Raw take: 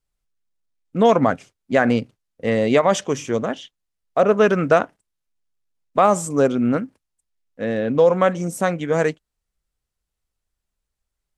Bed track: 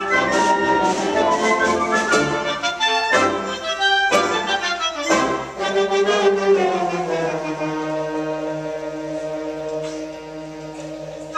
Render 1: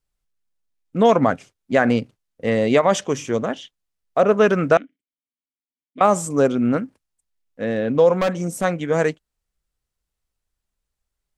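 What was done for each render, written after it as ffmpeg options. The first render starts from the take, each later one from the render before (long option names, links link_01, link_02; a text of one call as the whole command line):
ffmpeg -i in.wav -filter_complex "[0:a]asettb=1/sr,asplit=3[link_01][link_02][link_03];[link_01]atrim=end=4.774[link_04];[link_02]atrim=start=4.77:end=6.01,asetpts=PTS-STARTPTS,afade=type=in:duration=0.004:curve=qsin,afade=type=out:start_time=1.236:duration=0.004:curve=qsin,asplit=3[link_05][link_06][link_07];[link_05]bandpass=frequency=270:width_type=q:width=8,volume=0dB[link_08];[link_06]bandpass=frequency=2290:width_type=q:width=8,volume=-6dB[link_09];[link_07]bandpass=frequency=3010:width_type=q:width=8,volume=-9dB[link_10];[link_08][link_09][link_10]amix=inputs=3:normalize=0[link_11];[link_03]atrim=start=6.006[link_12];[link_04][link_11]acrossfade=duration=0.004:curve1=hsin:curve2=qsin[link_13];[link_13][link_12]acrossfade=duration=0.004:curve1=qsin:curve2=hsin,asplit=3[link_14][link_15][link_16];[link_14]afade=type=out:start_time=8.16:duration=0.02[link_17];[link_15]asoftclip=type=hard:threshold=-15.5dB,afade=type=in:start_time=8.16:duration=0.02,afade=type=out:start_time=8.63:duration=0.02[link_18];[link_16]afade=type=in:start_time=8.63:duration=0.02[link_19];[link_17][link_18][link_19]amix=inputs=3:normalize=0" out.wav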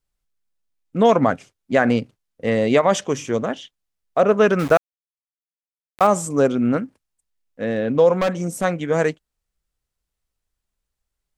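ffmpeg -i in.wav -filter_complex "[0:a]asettb=1/sr,asplit=3[link_01][link_02][link_03];[link_01]atrim=end=4.594[link_04];[link_02]atrim=start=4.59:end=6.07,asetpts=PTS-STARTPTS,afade=type=in:duration=0.004:curve=qsin,afade=type=out:start_time=1.476:duration=0.004:curve=qsin,aeval=exprs='val(0)*gte(abs(val(0)),0.0447)':channel_layout=same[link_05];[link_03]atrim=start=6.066[link_06];[link_04][link_05]acrossfade=duration=0.004:curve1=hsin:curve2=qsin[link_07];[link_07][link_06]acrossfade=duration=0.004:curve1=qsin:curve2=hsin" out.wav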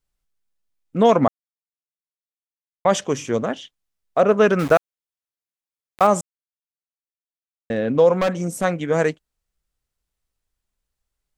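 ffmpeg -i in.wav -filter_complex "[0:a]asplit=5[link_01][link_02][link_03][link_04][link_05];[link_01]atrim=end=1.28,asetpts=PTS-STARTPTS,afade=type=out:start_time=1.276:duration=0.004:curve=hsin[link_06];[link_02]atrim=start=1.28:end=2.85,asetpts=PTS-STARTPTS,volume=0[link_07];[link_03]atrim=start=2.85:end=6.21,asetpts=PTS-STARTPTS,afade=type=in:duration=0.004:curve=hsin,afade=type=out:start_time=3.356:duration=0.004:curve=hsin[link_08];[link_04]atrim=start=6.21:end=7.7,asetpts=PTS-STARTPTS,volume=0[link_09];[link_05]atrim=start=7.7,asetpts=PTS-STARTPTS,afade=type=in:duration=0.004:curve=hsin[link_10];[link_06][link_07][link_08][link_09][link_10]concat=n=5:v=0:a=1" out.wav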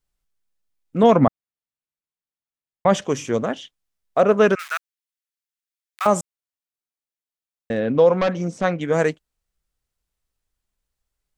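ffmpeg -i in.wav -filter_complex "[0:a]asettb=1/sr,asplit=3[link_01][link_02][link_03];[link_01]atrim=end=1.034[link_04];[link_02]atrim=start=1.03:end=3.02,asetpts=PTS-STARTPTS,afade=type=in:duration=0.004:curve=qsin,afade=type=out:start_time=1.986:duration=0.004:curve=qsin,bass=frequency=250:gain=6,treble=frequency=4000:gain=-6[link_05];[link_03]atrim=start=3.016[link_06];[link_04][link_05]acrossfade=duration=0.004:curve1=hsin:curve2=qsin[link_07];[link_07][link_06]acrossfade=duration=0.004:curve1=qsin:curve2=hsin,asettb=1/sr,asplit=3[link_08][link_09][link_10];[link_08]atrim=end=4.554[link_11];[link_09]atrim=start=4.55:end=6.06,asetpts=PTS-STARTPTS,afade=type=in:duration=0.004:curve=qsin,afade=type=out:start_time=1.506:duration=0.004:curve=qsin,highpass=frequency=1400:width=0.5412,highpass=frequency=1400:width=1.3066[link_12];[link_10]atrim=start=6.056[link_13];[link_11][link_12]acrossfade=duration=0.004:curve1=hsin:curve2=qsin[link_14];[link_14][link_13]acrossfade=duration=0.004:curve1=qsin:curve2=hsin,asettb=1/sr,asplit=3[link_15][link_16][link_17];[link_15]atrim=end=7.804[link_18];[link_16]atrim=start=7.8:end=8.81,asetpts=PTS-STARTPTS,afade=type=in:duration=0.004:curve=qsin,afade=type=out:start_time=1.006:duration=0.004:curve=qsin,lowpass=frequency=5700:width=0.5412,lowpass=frequency=5700:width=1.3066[link_19];[link_17]atrim=start=8.806[link_20];[link_18][link_19]acrossfade=duration=0.004:curve1=hsin:curve2=qsin[link_21];[link_21][link_20]acrossfade=duration=0.004:curve1=qsin:curve2=hsin" out.wav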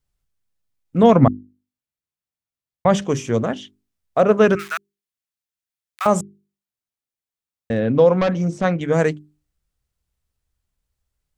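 ffmpeg -i in.wav -af "equalizer=frequency=87:width_type=o:width=2.2:gain=10,bandreject=frequency=50:width_type=h:width=6,bandreject=frequency=100:width_type=h:width=6,bandreject=frequency=150:width_type=h:width=6,bandreject=frequency=200:width_type=h:width=6,bandreject=frequency=250:width_type=h:width=6,bandreject=frequency=300:width_type=h:width=6,bandreject=frequency=350:width_type=h:width=6,bandreject=frequency=400:width_type=h:width=6" out.wav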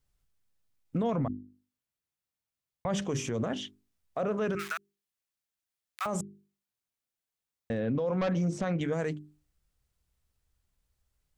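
ffmpeg -i in.wav -af "acompressor=threshold=-25dB:ratio=2,alimiter=limit=-23dB:level=0:latency=1:release=28" out.wav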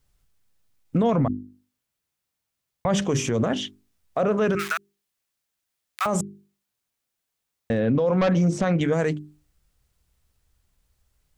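ffmpeg -i in.wav -af "volume=8.5dB" out.wav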